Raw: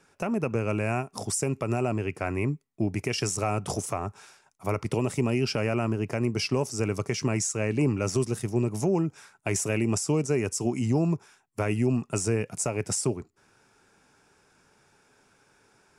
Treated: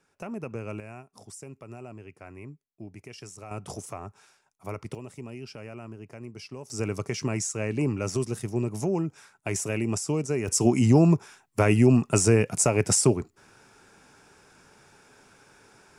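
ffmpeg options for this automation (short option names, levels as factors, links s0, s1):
-af "asetnsamples=n=441:p=0,asendcmd='0.8 volume volume -15.5dB;3.51 volume volume -7.5dB;4.95 volume volume -14.5dB;6.7 volume volume -2dB;10.48 volume volume 6.5dB',volume=0.398"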